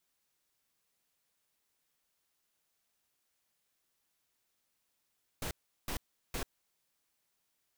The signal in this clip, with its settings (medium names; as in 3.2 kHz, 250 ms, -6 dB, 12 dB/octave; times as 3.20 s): noise bursts pink, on 0.09 s, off 0.37 s, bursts 3, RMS -37 dBFS